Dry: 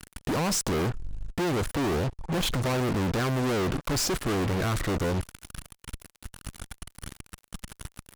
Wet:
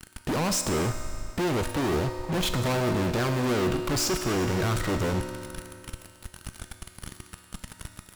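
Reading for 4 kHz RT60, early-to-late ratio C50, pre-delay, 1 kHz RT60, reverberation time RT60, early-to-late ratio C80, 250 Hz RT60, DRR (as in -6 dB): 2.4 s, 7.0 dB, 3 ms, 2.5 s, 2.5 s, 7.5 dB, 2.5 s, 5.0 dB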